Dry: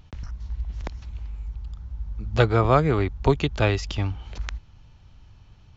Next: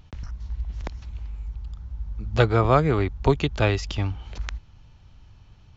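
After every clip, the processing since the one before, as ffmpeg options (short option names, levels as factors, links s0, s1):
-af anull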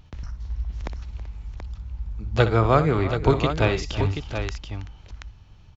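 -af "aecho=1:1:62|325|383|730:0.251|0.15|0.119|0.398"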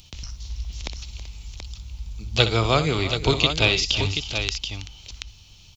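-filter_complex "[0:a]aexciter=amount=7.3:drive=6.7:freq=2500,acrossover=split=5200[s0][s1];[s1]acompressor=threshold=0.0126:ratio=4:attack=1:release=60[s2];[s0][s2]amix=inputs=2:normalize=0,volume=0.75"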